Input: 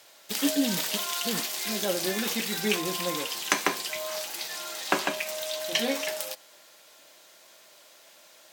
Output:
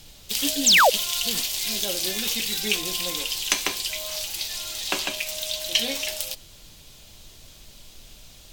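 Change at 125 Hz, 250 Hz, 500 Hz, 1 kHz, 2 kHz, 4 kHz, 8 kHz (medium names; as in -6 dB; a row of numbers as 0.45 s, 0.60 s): -2.5 dB, -4.0 dB, +0.5 dB, +5.5 dB, +5.0 dB, +7.5 dB, +6.5 dB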